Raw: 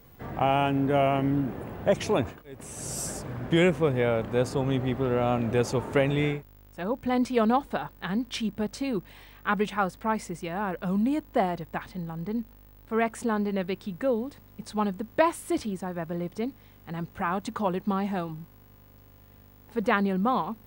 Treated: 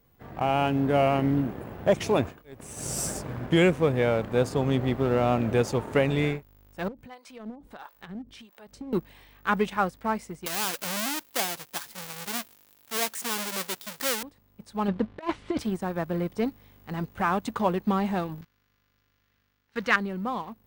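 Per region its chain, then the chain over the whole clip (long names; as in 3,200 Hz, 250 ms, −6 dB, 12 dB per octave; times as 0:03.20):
0:06.88–0:08.93: downward compressor 8 to 1, threshold −34 dBFS + two-band tremolo in antiphase 1.5 Hz, depth 100%, crossover 530 Hz
0:10.46–0:14.23: each half-wave held at its own peak + high-pass filter 100 Hz + spectral tilt +3.5 dB per octave
0:14.88–0:15.59: low-pass filter 4,100 Hz 24 dB per octave + compressor whose output falls as the input rises −28 dBFS, ratio −0.5
0:18.41–0:19.96: flat-topped bell 2,800 Hz +13 dB 2.7 octaves + noise gate −43 dBFS, range −18 dB
whole clip: leveller curve on the samples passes 1; automatic gain control gain up to 9 dB; level −8.5 dB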